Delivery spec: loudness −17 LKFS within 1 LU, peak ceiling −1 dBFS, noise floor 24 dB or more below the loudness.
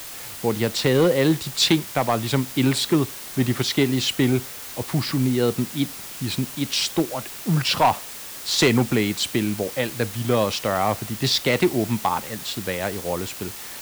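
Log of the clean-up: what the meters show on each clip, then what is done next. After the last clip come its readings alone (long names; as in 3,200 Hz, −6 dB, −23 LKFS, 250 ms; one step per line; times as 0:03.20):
share of clipped samples 0.5%; peaks flattened at −11.0 dBFS; background noise floor −37 dBFS; target noise floor −47 dBFS; integrated loudness −22.5 LKFS; sample peak −11.0 dBFS; target loudness −17.0 LKFS
→ clipped peaks rebuilt −11 dBFS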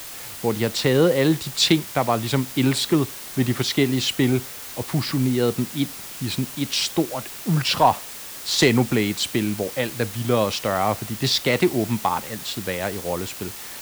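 share of clipped samples 0.0%; background noise floor −37 dBFS; target noise floor −47 dBFS
→ broadband denoise 10 dB, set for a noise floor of −37 dBFS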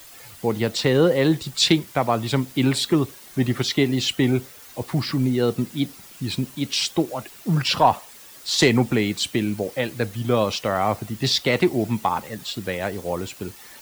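background noise floor −45 dBFS; target noise floor −47 dBFS
→ broadband denoise 6 dB, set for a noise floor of −45 dBFS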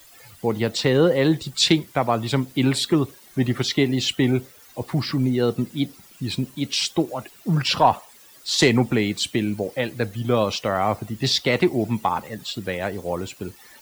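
background noise floor −49 dBFS; integrated loudness −22.5 LKFS; sample peak −4.0 dBFS; target loudness −17.0 LKFS
→ level +5.5 dB
brickwall limiter −1 dBFS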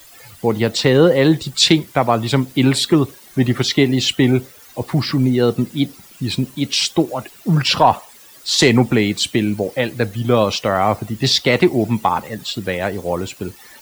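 integrated loudness −17.0 LKFS; sample peak −1.0 dBFS; background noise floor −44 dBFS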